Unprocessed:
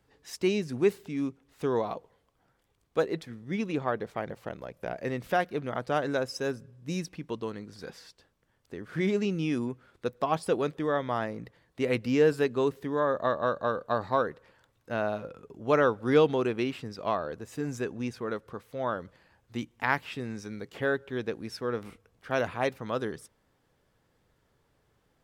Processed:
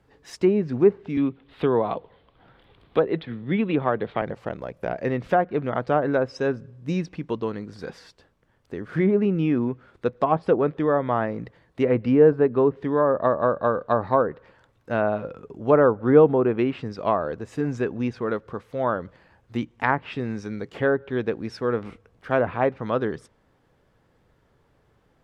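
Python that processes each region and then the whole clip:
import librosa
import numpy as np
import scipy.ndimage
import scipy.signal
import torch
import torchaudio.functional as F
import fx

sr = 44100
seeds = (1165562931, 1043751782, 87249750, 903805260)

y = fx.chain(x, sr, fx.high_shelf_res(hz=4900.0, db=-11.0, q=3.0),
    fx.band_squash(depth_pct=40), at=(1.17, 4.22))
y = fx.env_lowpass_down(y, sr, base_hz=1200.0, full_db=-22.5)
y = fx.high_shelf(y, sr, hz=3600.0, db=-10.5)
y = y * librosa.db_to_amplitude(7.5)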